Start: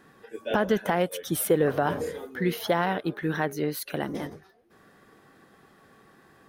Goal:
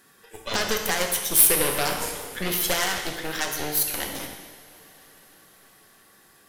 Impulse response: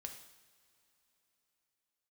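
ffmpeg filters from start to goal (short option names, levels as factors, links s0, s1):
-filter_complex "[0:a]aeval=exprs='0.299*(cos(1*acos(clip(val(0)/0.299,-1,1)))-cos(1*PI/2))+0.0668*(cos(8*acos(clip(val(0)/0.299,-1,1)))-cos(8*PI/2))':c=same,crystalizer=i=7:c=0[s0];[1:a]atrim=start_sample=2205,asetrate=28224,aresample=44100[s1];[s0][s1]afir=irnorm=-1:irlink=0,volume=0.596"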